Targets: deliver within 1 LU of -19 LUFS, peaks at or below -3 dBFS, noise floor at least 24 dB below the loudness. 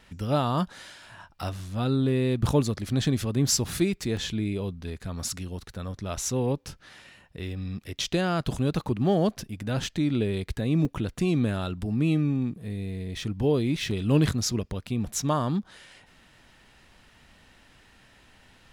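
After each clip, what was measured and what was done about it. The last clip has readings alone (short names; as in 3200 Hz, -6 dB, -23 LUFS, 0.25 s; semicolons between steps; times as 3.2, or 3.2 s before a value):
dropouts 4; longest dropout 1.9 ms; loudness -27.5 LUFS; peak -10.0 dBFS; loudness target -19.0 LUFS
-> interpolate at 3.47/4.17/10.85/13.91, 1.9 ms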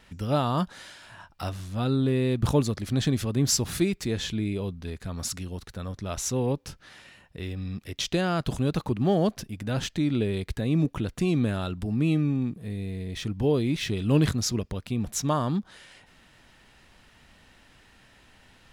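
dropouts 0; loudness -27.5 LUFS; peak -10.0 dBFS; loudness target -19.0 LUFS
-> gain +8.5 dB; limiter -3 dBFS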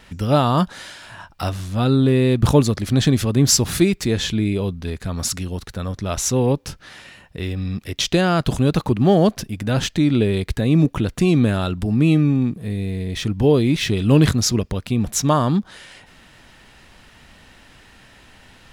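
loudness -19.0 LUFS; peak -3.0 dBFS; noise floor -49 dBFS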